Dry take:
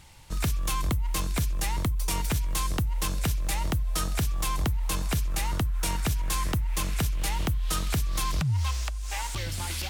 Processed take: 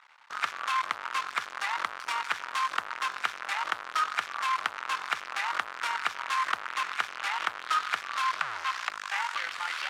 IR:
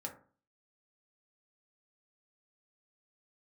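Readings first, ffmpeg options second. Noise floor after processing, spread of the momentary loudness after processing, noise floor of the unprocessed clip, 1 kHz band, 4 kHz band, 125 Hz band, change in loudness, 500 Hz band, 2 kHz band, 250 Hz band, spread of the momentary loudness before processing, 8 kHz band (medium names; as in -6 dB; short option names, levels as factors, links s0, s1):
-43 dBFS, 4 LU, -32 dBFS, +6.5 dB, -0.5 dB, under -35 dB, -2.0 dB, -8.0 dB, +7.5 dB, -23.0 dB, 3 LU, -11.5 dB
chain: -af "acrusher=bits=6:dc=4:mix=0:aa=0.000001,adynamicsmooth=sensitivity=1.5:basefreq=2200,highpass=f=1300:t=q:w=2.4,volume=1.68"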